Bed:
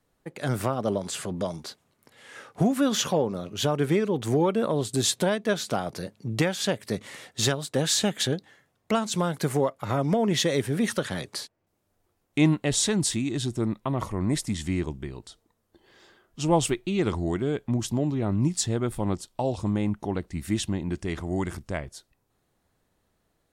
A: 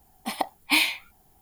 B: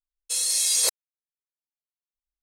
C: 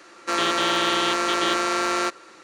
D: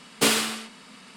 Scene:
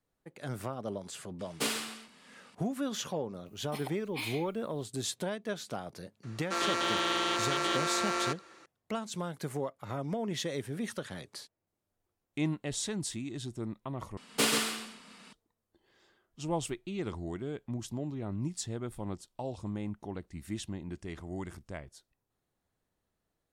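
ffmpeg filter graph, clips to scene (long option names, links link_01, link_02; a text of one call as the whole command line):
ffmpeg -i bed.wav -i cue0.wav -i cue1.wav -i cue2.wav -i cue3.wav -filter_complex "[4:a]asplit=2[link_01][link_02];[0:a]volume=-11dB[link_03];[1:a]alimiter=limit=-16.5dB:level=0:latency=1:release=162[link_04];[link_02]aecho=1:1:132:0.562[link_05];[link_03]asplit=2[link_06][link_07];[link_06]atrim=end=14.174[link_08];[link_05]atrim=end=1.16,asetpts=PTS-STARTPTS,volume=-7dB[link_09];[link_07]atrim=start=15.326[link_10];[link_01]atrim=end=1.16,asetpts=PTS-STARTPTS,volume=-11.5dB,afade=type=in:duration=0.004:curve=hsin,afade=type=out:start_time=1.156:duration=0.004:curve=hsin,adelay=1390[link_11];[link_04]atrim=end=1.41,asetpts=PTS-STARTPTS,volume=-11dB,afade=type=in:duration=0.004:curve=hsin,afade=type=out:start_time=1.406:duration=0.004:curve=hsin,adelay=3460[link_12];[3:a]atrim=end=2.43,asetpts=PTS-STARTPTS,volume=-8.5dB,afade=type=in:duration=0.004:curve=hsin,afade=type=out:start_time=2.426:duration=0.004:curve=hsin,adelay=6230[link_13];[link_08][link_09]acrossfade=duration=0.004:curve1=hsin:curve2=hsin[link_14];[link_14][link_10]acrossfade=duration=0.004:curve1=hsin:curve2=hsin[link_15];[link_15][link_11][link_12][link_13]amix=inputs=4:normalize=0" out.wav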